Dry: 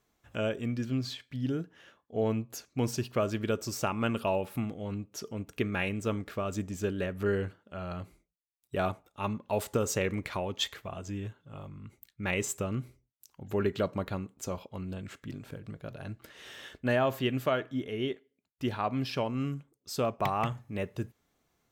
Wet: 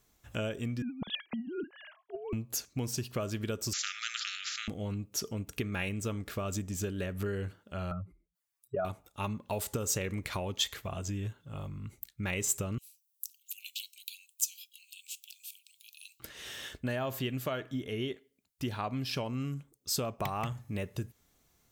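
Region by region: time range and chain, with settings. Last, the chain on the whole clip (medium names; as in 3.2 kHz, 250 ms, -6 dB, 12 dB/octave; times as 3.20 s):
0.82–2.33 s: formants replaced by sine waves + compressor with a negative ratio -39 dBFS
3.73–4.68 s: brick-wall FIR band-pass 1.2–7.5 kHz + distance through air 140 m + spectrum-flattening compressor 4:1
7.91–8.85 s: spectral contrast enhancement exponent 2.2 + high-pass 120 Hz 6 dB/octave + peaking EQ 1.2 kHz +11 dB 1.7 oct
12.78–16.20 s: steep high-pass 2.5 kHz 96 dB/octave + treble shelf 9.5 kHz +12 dB
whole clip: bass shelf 110 Hz +10 dB; compression 4:1, threshold -32 dBFS; treble shelf 3.9 kHz +11 dB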